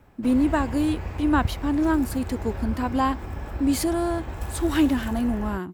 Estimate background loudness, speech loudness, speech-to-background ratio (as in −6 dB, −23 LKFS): −33.5 LKFS, −25.0 LKFS, 8.5 dB